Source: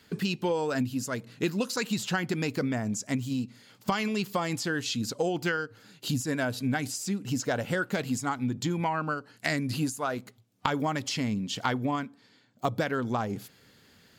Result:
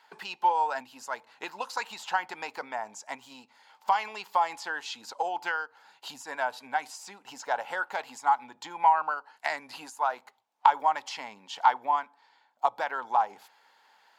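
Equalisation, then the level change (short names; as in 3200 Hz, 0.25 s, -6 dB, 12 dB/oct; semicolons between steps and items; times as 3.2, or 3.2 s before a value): resonant high-pass 870 Hz, resonance Q 6.9; high shelf 5600 Hz -11 dB; notch 1200 Hz, Q 20; -2.5 dB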